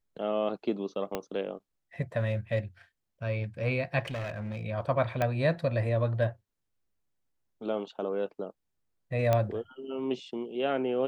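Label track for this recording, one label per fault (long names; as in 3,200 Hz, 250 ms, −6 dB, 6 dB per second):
1.150000	1.150000	click −17 dBFS
4.050000	4.630000	clipping −31.5 dBFS
5.220000	5.220000	click −15 dBFS
9.330000	9.330000	click −13 dBFS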